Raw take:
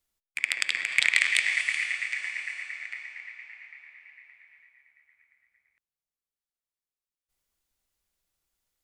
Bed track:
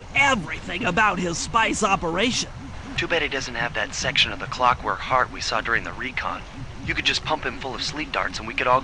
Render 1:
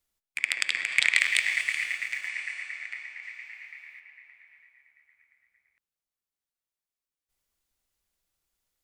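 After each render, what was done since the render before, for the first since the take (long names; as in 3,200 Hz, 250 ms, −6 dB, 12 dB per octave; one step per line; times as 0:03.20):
0:01.19–0:02.28: mu-law and A-law mismatch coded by A
0:03.22–0:03.99: high-shelf EQ 5,500 Hz → 3,300 Hz +11.5 dB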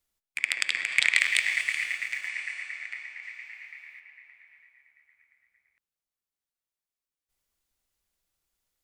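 no processing that can be heard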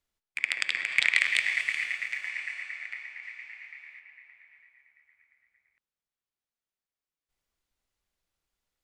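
high-shelf EQ 7,000 Hz −11.5 dB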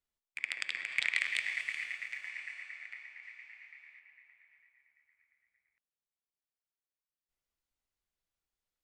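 level −8 dB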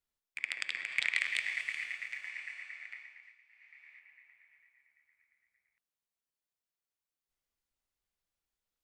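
0:02.94–0:03.94: duck −13.5 dB, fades 0.45 s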